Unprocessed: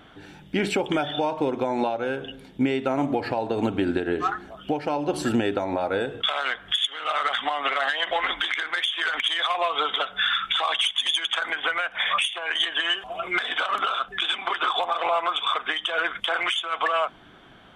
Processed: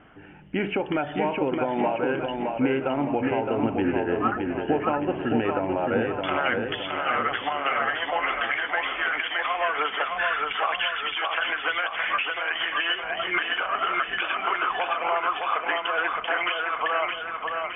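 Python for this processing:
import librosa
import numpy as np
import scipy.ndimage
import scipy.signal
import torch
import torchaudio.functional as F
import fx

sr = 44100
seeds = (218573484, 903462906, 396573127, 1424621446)

y = scipy.signal.sosfilt(scipy.signal.butter(16, 3000.0, 'lowpass', fs=sr, output='sos'), x)
y = fx.rider(y, sr, range_db=3, speed_s=0.5)
y = fx.echo_feedback(y, sr, ms=616, feedback_pct=53, wet_db=-4)
y = F.gain(torch.from_numpy(y), -1.0).numpy()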